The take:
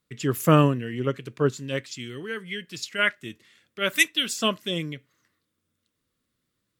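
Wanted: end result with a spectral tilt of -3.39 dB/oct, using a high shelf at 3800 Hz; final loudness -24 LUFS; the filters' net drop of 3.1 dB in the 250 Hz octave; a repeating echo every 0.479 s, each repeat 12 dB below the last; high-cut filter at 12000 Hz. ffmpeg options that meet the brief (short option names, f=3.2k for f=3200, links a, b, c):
-af "lowpass=12k,equalizer=f=250:t=o:g=-4.5,highshelf=f=3.8k:g=6,aecho=1:1:479|958|1437:0.251|0.0628|0.0157,volume=1dB"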